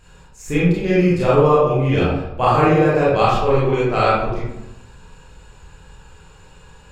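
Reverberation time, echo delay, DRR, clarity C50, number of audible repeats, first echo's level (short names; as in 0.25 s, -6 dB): 0.90 s, none, -8.5 dB, -2.0 dB, none, none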